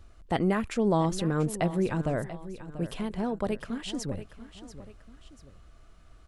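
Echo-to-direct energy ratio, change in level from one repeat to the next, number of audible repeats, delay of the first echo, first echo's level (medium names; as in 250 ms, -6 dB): -13.0 dB, -7.5 dB, 2, 688 ms, -14.0 dB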